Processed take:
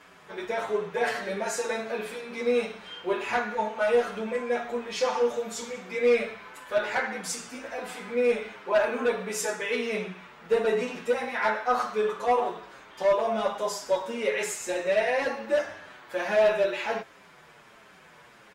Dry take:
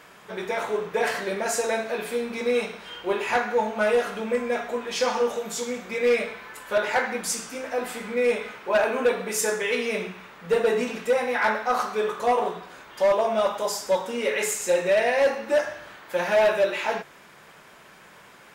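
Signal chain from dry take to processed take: treble shelf 11 kHz -11 dB; endless flanger 7.2 ms -1.4 Hz

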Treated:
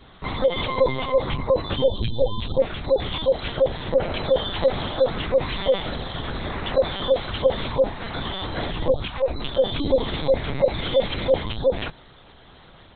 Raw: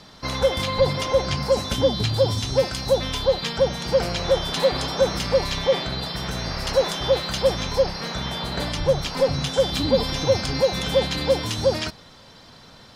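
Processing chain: spectral gate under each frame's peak -25 dB strong; LPC vocoder at 8 kHz pitch kept; 9.04–9.47 s: peaking EQ 610 Hz -> 79 Hz -14.5 dB 1 oct

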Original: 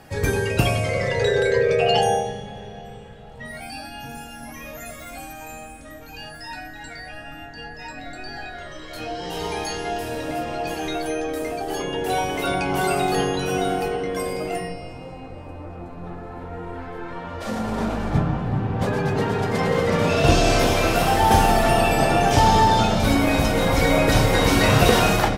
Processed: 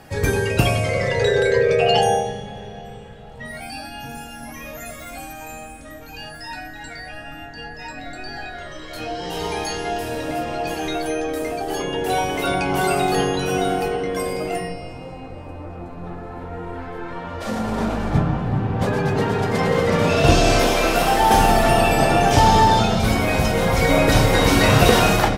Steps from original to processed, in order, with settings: 20.60–21.39 s: peaking EQ 100 Hz -12 dB 1 oct; 22.79–23.89 s: comb of notches 290 Hz; trim +2 dB

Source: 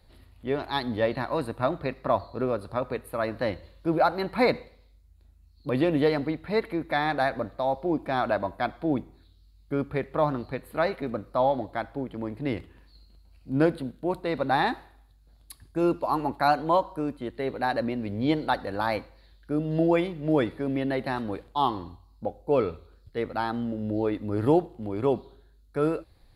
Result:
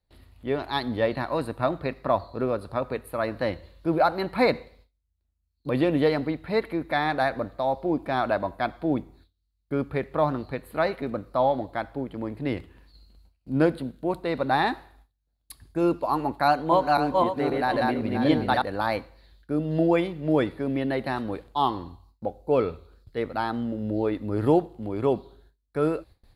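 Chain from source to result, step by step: 16.45–18.62 s: backward echo that repeats 263 ms, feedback 43%, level -1 dB; gate with hold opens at -47 dBFS; trim +1 dB

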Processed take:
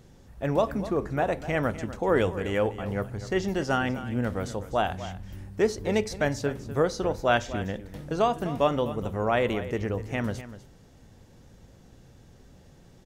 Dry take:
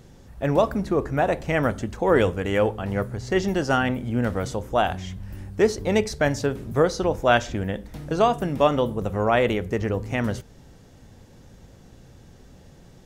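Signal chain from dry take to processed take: delay 249 ms -14 dB; trim -4.5 dB

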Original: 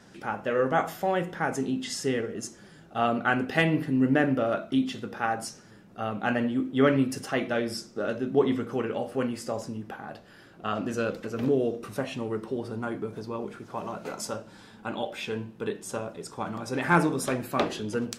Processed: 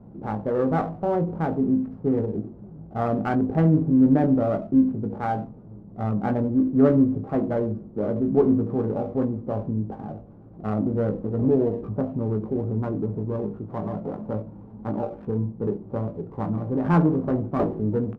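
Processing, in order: local Wiener filter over 25 samples; low-pass 1.2 kHz 24 dB/octave; bass shelf 230 Hz +12 dB; doubling 19 ms -7 dB; in parallel at -2 dB: peak limiter -22 dBFS, peak gain reduction 16 dB; on the sum: sliding maximum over 5 samples; trim -2.5 dB

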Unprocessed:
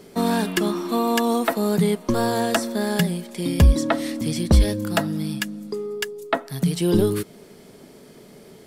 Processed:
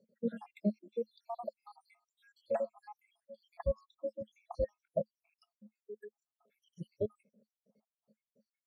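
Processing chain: random holes in the spectrogram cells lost 83%; spectral noise reduction 19 dB; two resonant band-passes 340 Hz, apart 1.3 oct; trim +4 dB

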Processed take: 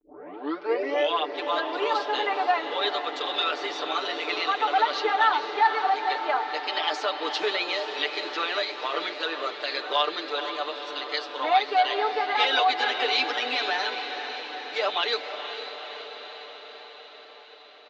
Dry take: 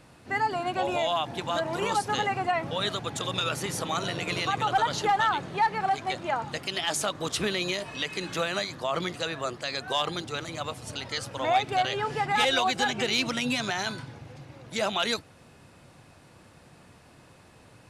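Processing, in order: tape start-up on the opening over 1.15 s; gate -50 dBFS, range -8 dB; elliptic band-pass 350–4600 Hz, stop band 40 dB; comb 6.8 ms, depth 87%; on a send: echo that smears into a reverb 474 ms, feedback 68%, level -9 dB

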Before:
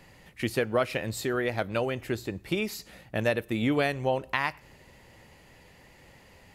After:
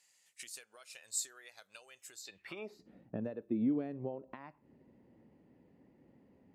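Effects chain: spectral noise reduction 8 dB; compression 5:1, threshold -36 dBFS, peak gain reduction 14 dB; band-pass sweep 7.6 kHz -> 260 Hz, 2.19–2.83 s; trim +8.5 dB

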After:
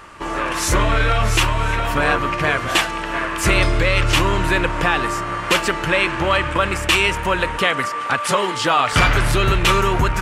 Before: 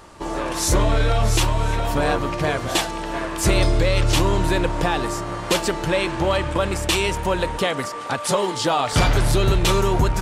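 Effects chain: high-order bell 1.8 kHz +8.5 dB

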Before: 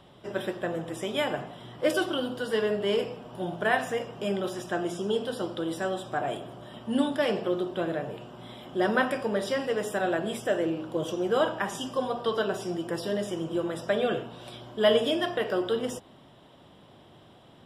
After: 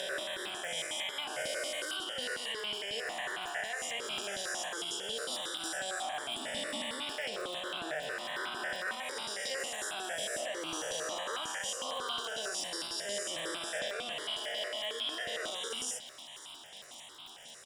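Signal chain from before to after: reverse spectral sustain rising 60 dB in 2.42 s; frequency weighting ITU-R 468; compression 6:1, threshold -29 dBFS, peak gain reduction 14.5 dB; peak limiter -25 dBFS, peak gain reduction 8 dB; crackle 36 per s -37 dBFS; doubling 13 ms -13 dB; feedback echo behind a high-pass 558 ms, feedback 78%, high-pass 2.6 kHz, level -14 dB; stepped phaser 11 Hz 340–1800 Hz

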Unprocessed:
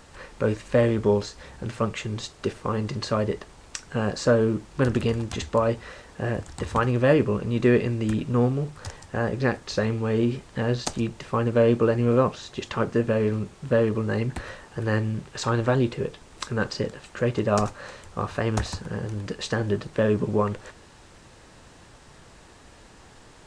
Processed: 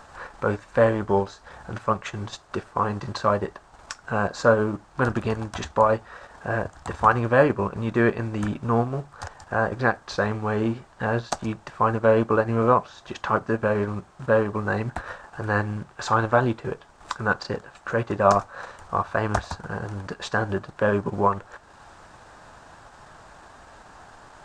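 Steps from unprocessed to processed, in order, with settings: speed mistake 25 fps video run at 24 fps; transient shaper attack -2 dB, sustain -7 dB; high-order bell 1 kHz +10 dB; trim -1.5 dB

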